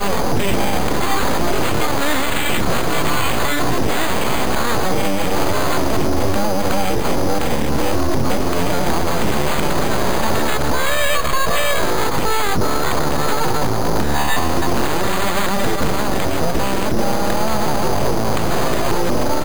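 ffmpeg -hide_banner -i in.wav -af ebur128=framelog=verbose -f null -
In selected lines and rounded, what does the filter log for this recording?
Integrated loudness:
  I:         -19.2 LUFS
  Threshold: -29.2 LUFS
Loudness range:
  LRA:         1.0 LU
  Threshold: -39.2 LUFS
  LRA low:   -19.6 LUFS
  LRA high:  -18.6 LUFS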